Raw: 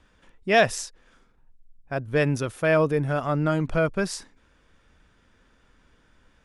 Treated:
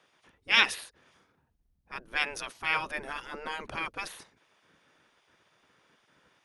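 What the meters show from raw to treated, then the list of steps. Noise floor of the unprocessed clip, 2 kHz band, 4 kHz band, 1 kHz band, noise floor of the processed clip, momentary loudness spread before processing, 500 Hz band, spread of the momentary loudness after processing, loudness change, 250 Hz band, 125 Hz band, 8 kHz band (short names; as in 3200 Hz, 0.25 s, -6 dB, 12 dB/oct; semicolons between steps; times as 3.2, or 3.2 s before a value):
-62 dBFS, -1.0 dB, +4.5 dB, -6.5 dB, -72 dBFS, 13 LU, -21.0 dB, 21 LU, -5.5 dB, -20.5 dB, -27.5 dB, -7.5 dB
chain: spectral gate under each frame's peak -15 dB weak; dynamic EQ 2600 Hz, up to +7 dB, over -40 dBFS, Q 0.73; notch 7500 Hz, Q 6.2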